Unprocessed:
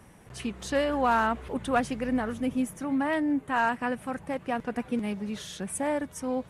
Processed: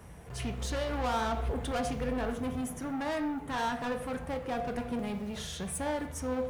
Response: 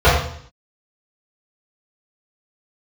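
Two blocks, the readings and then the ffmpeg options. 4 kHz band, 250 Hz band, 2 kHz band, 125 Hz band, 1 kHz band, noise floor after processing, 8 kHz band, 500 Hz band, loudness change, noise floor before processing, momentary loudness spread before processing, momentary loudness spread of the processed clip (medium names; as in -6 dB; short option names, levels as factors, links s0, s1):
-0.5 dB, -6.0 dB, -7.0 dB, +4.0 dB, -5.5 dB, -45 dBFS, -1.0 dB, -3.5 dB, -5.0 dB, -52 dBFS, 9 LU, 5 LU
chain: -filter_complex "[0:a]acrusher=bits=7:mode=log:mix=0:aa=0.000001,asoftclip=type=tanh:threshold=0.0266,asplit=2[s0][s1];[1:a]atrim=start_sample=2205,highshelf=f=4300:g=10[s2];[s1][s2]afir=irnorm=-1:irlink=0,volume=0.0251[s3];[s0][s3]amix=inputs=2:normalize=0"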